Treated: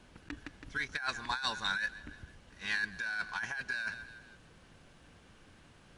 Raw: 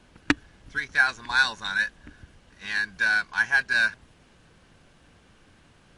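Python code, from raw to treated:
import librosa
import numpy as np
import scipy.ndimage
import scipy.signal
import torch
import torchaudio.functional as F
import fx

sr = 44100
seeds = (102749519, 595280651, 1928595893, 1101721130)

y = fx.echo_feedback(x, sr, ms=163, feedback_pct=50, wet_db=-23.5)
y = fx.over_compress(y, sr, threshold_db=-28.0, ratio=-1.0)
y = F.gain(torch.from_numpy(y), -7.0).numpy()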